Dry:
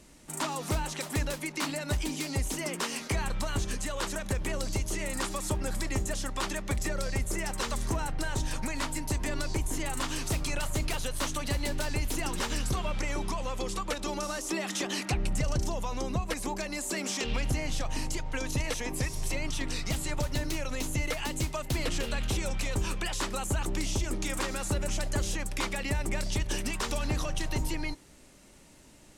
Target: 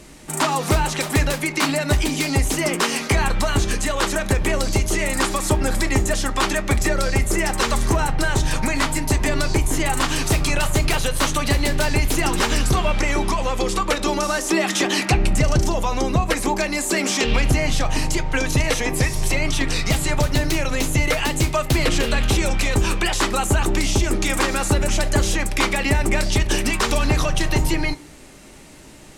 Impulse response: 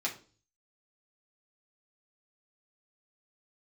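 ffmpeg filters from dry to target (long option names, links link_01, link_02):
-filter_complex "[0:a]asplit=2[link_01][link_02];[1:a]atrim=start_sample=2205,lowpass=4600[link_03];[link_02][link_03]afir=irnorm=-1:irlink=0,volume=-10.5dB[link_04];[link_01][link_04]amix=inputs=2:normalize=0,acontrast=74,volume=4dB"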